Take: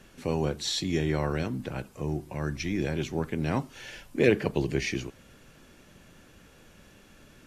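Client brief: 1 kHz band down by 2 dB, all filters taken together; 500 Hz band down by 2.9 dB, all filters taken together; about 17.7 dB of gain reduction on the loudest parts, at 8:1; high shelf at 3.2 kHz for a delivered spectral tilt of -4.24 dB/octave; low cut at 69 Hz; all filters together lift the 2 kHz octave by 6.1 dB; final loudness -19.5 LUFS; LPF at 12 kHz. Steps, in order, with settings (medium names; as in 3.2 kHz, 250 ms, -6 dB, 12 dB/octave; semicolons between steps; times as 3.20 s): high-pass 69 Hz; low-pass 12 kHz; peaking EQ 500 Hz -3.5 dB; peaking EQ 1 kHz -3.5 dB; peaking EQ 2 kHz +6.5 dB; treble shelf 3.2 kHz +5.5 dB; compression 8:1, threshold -35 dBFS; trim +19.5 dB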